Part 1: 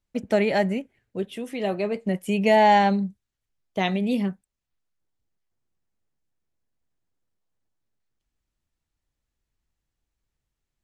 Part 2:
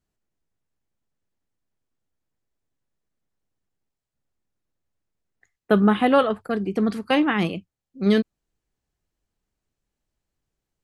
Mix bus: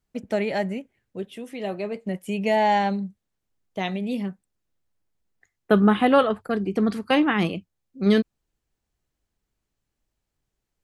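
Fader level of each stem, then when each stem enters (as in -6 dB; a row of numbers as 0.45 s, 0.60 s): -3.5 dB, 0.0 dB; 0.00 s, 0.00 s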